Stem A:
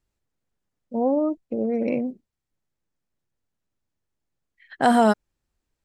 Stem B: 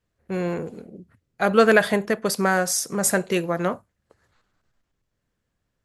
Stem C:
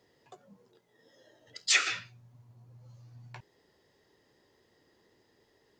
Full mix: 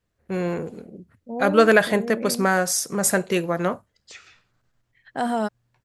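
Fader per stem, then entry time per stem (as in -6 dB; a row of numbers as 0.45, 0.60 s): -7.0, +0.5, -19.5 dB; 0.35, 0.00, 2.40 s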